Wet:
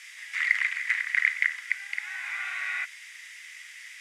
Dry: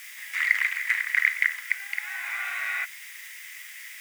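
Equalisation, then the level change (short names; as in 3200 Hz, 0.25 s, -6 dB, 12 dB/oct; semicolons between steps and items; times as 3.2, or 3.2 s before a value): HPF 1300 Hz 6 dB/oct; Bessel low-pass 7000 Hz, order 4; 0.0 dB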